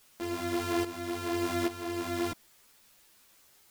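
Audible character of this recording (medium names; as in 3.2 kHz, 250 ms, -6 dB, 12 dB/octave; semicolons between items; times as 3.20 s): a buzz of ramps at a fixed pitch in blocks of 128 samples; tremolo saw up 1.2 Hz, depth 75%; a quantiser's noise floor 10-bit, dither triangular; a shimmering, thickened sound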